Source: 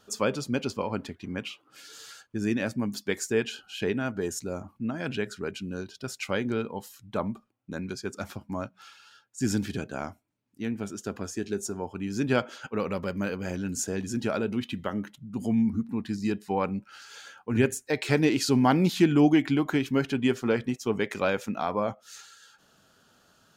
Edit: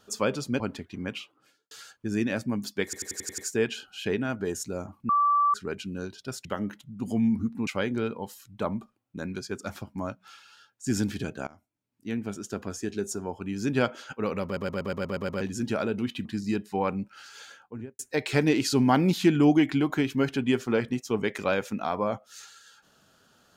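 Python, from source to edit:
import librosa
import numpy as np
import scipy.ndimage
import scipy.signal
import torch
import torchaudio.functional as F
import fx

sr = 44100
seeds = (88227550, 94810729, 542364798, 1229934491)

y = fx.studio_fade_out(x, sr, start_s=1.48, length_s=0.53)
y = fx.studio_fade_out(y, sr, start_s=17.16, length_s=0.59)
y = fx.edit(y, sr, fx.cut(start_s=0.6, length_s=0.3),
    fx.stutter(start_s=3.14, slice_s=0.09, count=7),
    fx.bleep(start_s=4.85, length_s=0.45, hz=1160.0, db=-19.0),
    fx.fade_in_from(start_s=10.01, length_s=0.64, floor_db=-22.5),
    fx.stutter_over(start_s=12.99, slice_s=0.12, count=8),
    fx.move(start_s=14.79, length_s=1.22, to_s=6.21), tone=tone)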